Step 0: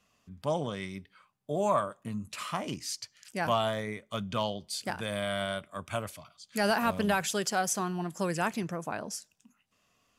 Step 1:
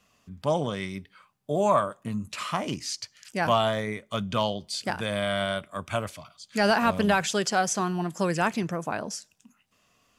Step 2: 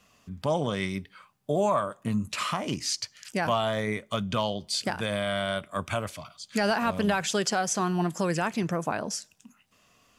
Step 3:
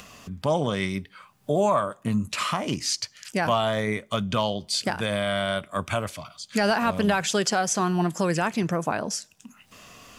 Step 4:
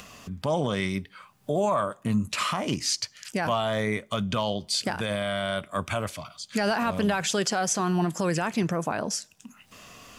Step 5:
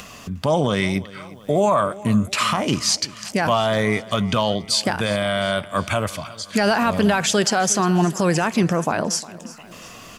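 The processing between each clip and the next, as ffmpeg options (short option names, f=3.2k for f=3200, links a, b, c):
-filter_complex "[0:a]acrossover=split=8300[a][b];[b]acompressor=threshold=-59dB:ratio=4:attack=1:release=60[c];[a][c]amix=inputs=2:normalize=0,volume=5dB"
-af "alimiter=limit=-19dB:level=0:latency=1:release=298,volume=3.5dB"
-af "acompressor=mode=upward:threshold=-39dB:ratio=2.5,volume=3dB"
-af "alimiter=limit=-16dB:level=0:latency=1:release=22"
-af "aecho=1:1:356|712|1068|1424:0.112|0.0595|0.0315|0.0167,volume=7dB"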